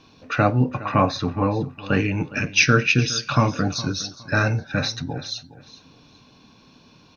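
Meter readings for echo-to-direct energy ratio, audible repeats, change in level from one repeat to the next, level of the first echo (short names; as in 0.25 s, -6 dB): -16.5 dB, 2, -11.5 dB, -17.0 dB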